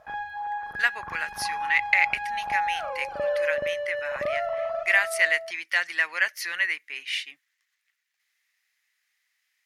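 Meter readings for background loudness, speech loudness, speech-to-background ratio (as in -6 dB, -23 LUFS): -30.5 LUFS, -26.5 LUFS, 4.0 dB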